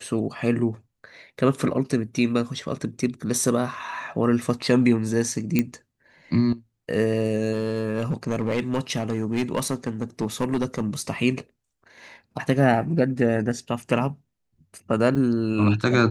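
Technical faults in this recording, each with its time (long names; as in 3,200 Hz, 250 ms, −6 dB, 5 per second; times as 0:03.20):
0:05.59: click −8 dBFS
0:07.53–0:10.81: clipping −18 dBFS
0:15.15–0:15.16: drop-out 5.6 ms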